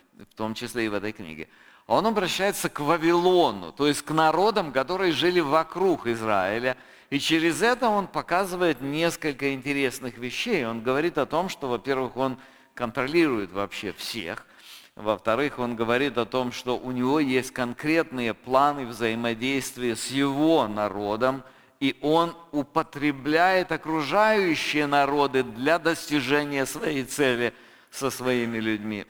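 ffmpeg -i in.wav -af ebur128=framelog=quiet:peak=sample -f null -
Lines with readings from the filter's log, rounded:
Integrated loudness:
  I:         -24.9 LUFS
  Threshold: -35.2 LUFS
Loudness range:
  LRA:         4.7 LU
  Threshold: -45.0 LUFS
  LRA low:   -27.6 LUFS
  LRA high:  -22.9 LUFS
Sample peak:
  Peak:       -6.9 dBFS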